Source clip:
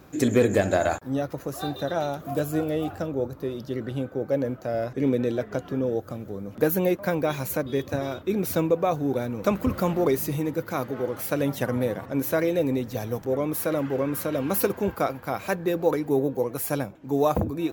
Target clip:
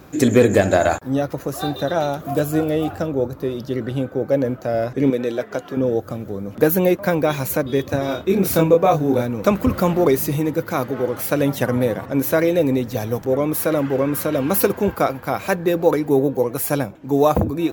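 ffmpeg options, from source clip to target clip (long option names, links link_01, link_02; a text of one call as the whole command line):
ffmpeg -i in.wav -filter_complex "[0:a]asettb=1/sr,asplit=3[link_01][link_02][link_03];[link_01]atrim=end=5.104[link_04];[link_02]atrim=start=5.1:end=5.77,asetpts=PTS-STARTPTS,afade=type=in:duration=0.004:curve=qsin,afade=type=out:start_time=0.666:duration=0.004:curve=qsin,highpass=frequency=430:poles=1[link_05];[link_03]atrim=start=5.766[link_06];[link_04][link_05]acrossfade=duration=0.004:curve1=hsin:curve2=qsin[link_07];[link_07][link_06]acrossfade=duration=0.004:curve1=qsin:curve2=hsin,asettb=1/sr,asplit=3[link_08][link_09][link_10];[link_08]atrim=end=8.064[link_11];[link_09]atrim=start=8.06:end=9.22,asetpts=PTS-STARTPTS,afade=type=in:duration=0.004:curve=qsin,afade=type=out:start_time=1.156:duration=0.004:curve=qsin,asplit=2[link_12][link_13];[link_13]adelay=26,volume=-3dB[link_14];[link_12][link_14]amix=inputs=2:normalize=0,atrim=end_sample=51156[link_15];[link_10]atrim=start=9.216[link_16];[link_11][link_15]acrossfade=duration=0.004:curve1=hsin:curve2=qsin[link_17];[link_17][link_16]acrossfade=duration=0.004:curve1=qsin:curve2=hsin,volume=6.5dB" out.wav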